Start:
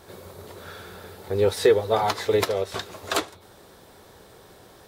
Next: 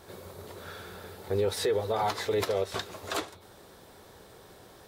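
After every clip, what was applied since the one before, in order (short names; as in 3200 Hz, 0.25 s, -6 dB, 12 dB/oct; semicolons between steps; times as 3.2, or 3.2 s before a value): limiter -17 dBFS, peak gain reduction 9.5 dB; gain -2.5 dB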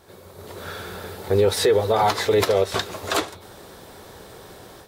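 AGC gain up to 10.5 dB; gain -1 dB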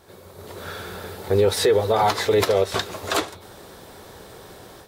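nothing audible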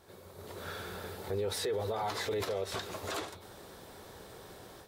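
limiter -19 dBFS, peak gain reduction 9 dB; gain -7.5 dB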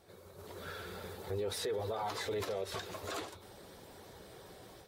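bin magnitudes rounded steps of 15 dB; gain -2.5 dB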